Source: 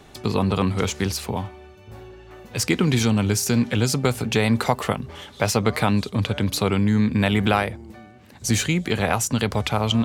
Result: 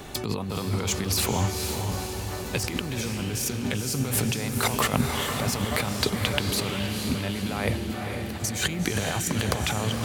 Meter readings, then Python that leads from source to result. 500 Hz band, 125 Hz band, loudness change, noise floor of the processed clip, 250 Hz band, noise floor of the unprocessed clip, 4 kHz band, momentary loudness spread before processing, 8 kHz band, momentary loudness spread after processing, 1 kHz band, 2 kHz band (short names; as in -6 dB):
-6.0 dB, -5.0 dB, -5.0 dB, -33 dBFS, -7.0 dB, -47 dBFS, -1.0 dB, 9 LU, -0.5 dB, 6 LU, -5.0 dB, -3.0 dB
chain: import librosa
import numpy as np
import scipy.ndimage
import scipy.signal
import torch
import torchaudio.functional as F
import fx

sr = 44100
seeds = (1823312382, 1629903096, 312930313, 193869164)

p1 = fx.high_shelf(x, sr, hz=11000.0, db=10.5)
p2 = fx.over_compress(p1, sr, threshold_db=-29.0, ratio=-1.0)
y = p2 + fx.echo_diffused(p2, sr, ms=474, feedback_pct=57, wet_db=-5, dry=0)